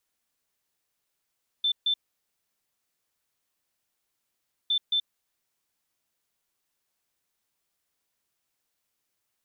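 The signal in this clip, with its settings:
beeps in groups sine 3,540 Hz, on 0.08 s, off 0.14 s, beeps 2, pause 2.76 s, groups 2, −21.5 dBFS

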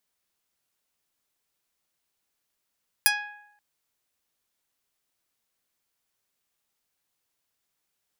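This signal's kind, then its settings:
Karplus-Strong string G#5, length 0.53 s, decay 0.84 s, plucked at 0.2, medium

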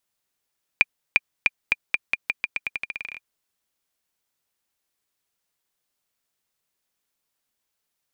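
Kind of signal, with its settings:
bouncing ball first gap 0.35 s, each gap 0.86, 2,400 Hz, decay 32 ms −2 dBFS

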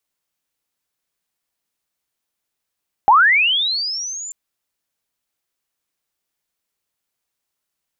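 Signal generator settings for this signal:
glide linear 760 Hz → 7,300 Hz −6.5 dBFS → −28 dBFS 1.24 s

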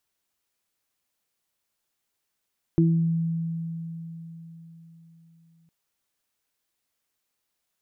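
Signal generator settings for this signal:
harmonic partials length 2.91 s, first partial 165 Hz, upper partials −0.5 dB, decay 4.19 s, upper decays 0.48 s, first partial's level −16.5 dB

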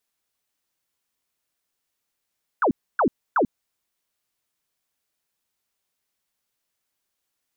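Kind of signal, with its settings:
repeated falling chirps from 1,600 Hz, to 200 Hz, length 0.09 s sine, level −16 dB, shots 3, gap 0.28 s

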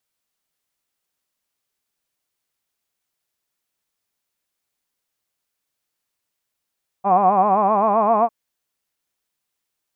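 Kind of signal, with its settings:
vowel by formant synthesis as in hod, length 1.25 s, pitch 188 Hz, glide +3 semitones, vibrato 7.7 Hz, vibrato depth 1.15 semitones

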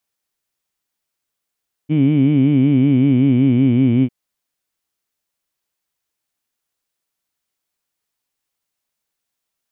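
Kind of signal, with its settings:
vowel by formant synthesis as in heed, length 2.20 s, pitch 146 Hz, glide −3 semitones, vibrato depth 1.3 semitones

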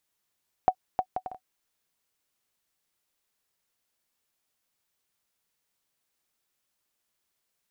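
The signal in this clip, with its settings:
bouncing ball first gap 0.31 s, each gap 0.56, 745 Hz, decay 69 ms −9.5 dBFS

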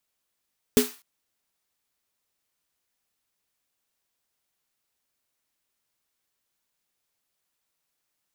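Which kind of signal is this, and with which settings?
synth snare length 0.25 s, tones 250 Hz, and 420 Hz, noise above 790 Hz, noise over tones −8 dB, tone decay 0.19 s, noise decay 0.37 s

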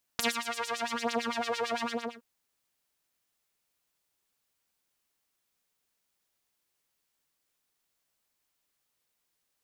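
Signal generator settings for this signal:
subtractive patch with filter wobble A#3, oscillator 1 saw, oscillator 2 saw, interval 0 semitones, oscillator 2 level −1.5 dB, sub −22 dB, filter bandpass, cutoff 1,100 Hz, Q 1.5, filter envelope 2 octaves, filter decay 1.02 s, filter sustain 30%, attack 1 ms, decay 0.19 s, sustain −11 dB, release 0.37 s, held 1.65 s, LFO 8.9 Hz, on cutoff 1.6 octaves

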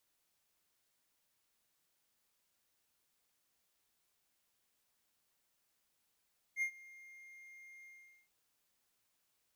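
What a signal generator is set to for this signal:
note with an ADSR envelope triangle 2,120 Hz, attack 60 ms, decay 84 ms, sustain −22.5 dB, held 1.29 s, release 435 ms −29 dBFS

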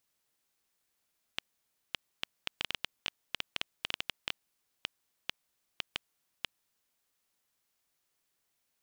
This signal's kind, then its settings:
Geiger counter clicks 4.6 per second −13.5 dBFS 5.87 s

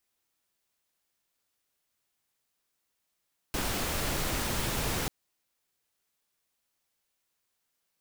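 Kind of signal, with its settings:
noise pink, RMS −31 dBFS 1.54 s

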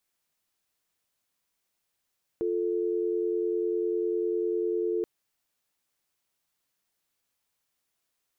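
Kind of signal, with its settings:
call progress tone dial tone, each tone −28 dBFS 2.63 s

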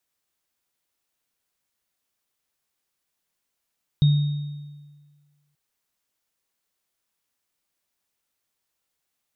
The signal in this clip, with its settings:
inharmonic partials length 1.53 s, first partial 146 Hz, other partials 3,720 Hz, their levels −17 dB, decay 1.56 s, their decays 1.23 s, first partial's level −12 dB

